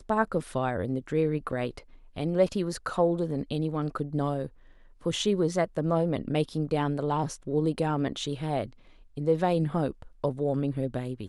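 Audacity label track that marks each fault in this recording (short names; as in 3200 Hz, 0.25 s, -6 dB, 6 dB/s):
1.520000	1.520000	gap 4.8 ms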